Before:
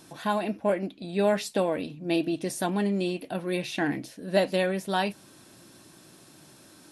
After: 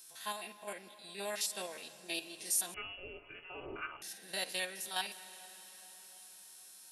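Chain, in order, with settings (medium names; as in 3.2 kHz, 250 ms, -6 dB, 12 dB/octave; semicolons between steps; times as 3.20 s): spectrogram pixelated in time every 50 ms; in parallel at +2 dB: level held to a coarse grid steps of 13 dB; on the sum: differentiator; comb of notches 290 Hz; on a send at -13.5 dB: reverberation RT60 5.3 s, pre-delay 108 ms; 2.74–4.02 s: on the sum: frequency inversion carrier 3.1 kHz; trim +1 dB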